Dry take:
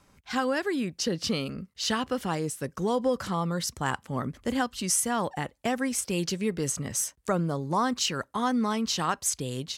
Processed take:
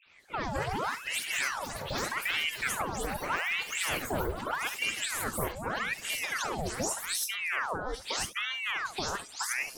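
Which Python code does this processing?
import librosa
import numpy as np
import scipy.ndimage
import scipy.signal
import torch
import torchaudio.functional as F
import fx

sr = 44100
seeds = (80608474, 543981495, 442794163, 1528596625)

y = fx.spec_delay(x, sr, highs='late', ms=200)
y = fx.dynamic_eq(y, sr, hz=2100.0, q=1.2, threshold_db=-47.0, ratio=4.0, max_db=-7)
y = fx.over_compress(y, sr, threshold_db=-31.0, ratio=-1.0)
y = fx.room_early_taps(y, sr, ms=(48, 70), db=(-15.5, -15.5))
y = fx.echo_pitch(y, sr, ms=317, semitones=6, count=3, db_per_echo=-6.0)
y = fx.ring_lfo(y, sr, carrier_hz=1400.0, swing_pct=85, hz=0.82)
y = y * 10.0 ** (1.0 / 20.0)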